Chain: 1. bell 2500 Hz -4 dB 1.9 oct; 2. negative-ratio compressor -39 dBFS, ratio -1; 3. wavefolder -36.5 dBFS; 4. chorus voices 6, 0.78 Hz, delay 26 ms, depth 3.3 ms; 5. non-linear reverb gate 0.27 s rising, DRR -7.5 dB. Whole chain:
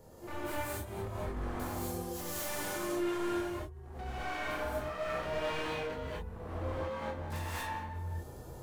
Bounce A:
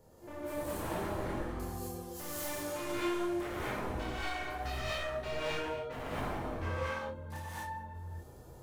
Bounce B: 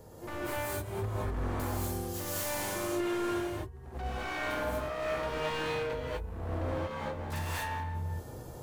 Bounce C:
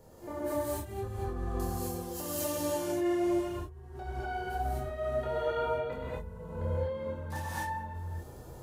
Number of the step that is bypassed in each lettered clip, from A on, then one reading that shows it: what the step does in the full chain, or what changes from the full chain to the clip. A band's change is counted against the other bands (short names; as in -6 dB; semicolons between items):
2, 8 kHz band -2.0 dB; 4, 125 Hz band +2.0 dB; 3, distortion 0 dB